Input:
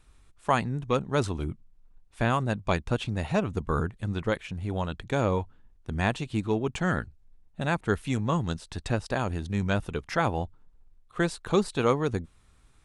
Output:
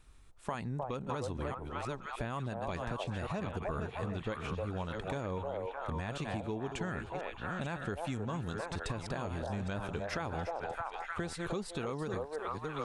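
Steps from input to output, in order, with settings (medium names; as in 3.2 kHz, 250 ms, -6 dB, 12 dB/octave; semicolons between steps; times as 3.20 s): chunks repeated in reverse 515 ms, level -10 dB; on a send: repeats whose band climbs or falls 306 ms, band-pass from 630 Hz, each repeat 0.7 oct, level -2.5 dB; on the sum: peak limiter -17.5 dBFS, peak gain reduction 9 dB; compression, threshold -32 dBFS, peak gain reduction 9.5 dB; trim -1.5 dB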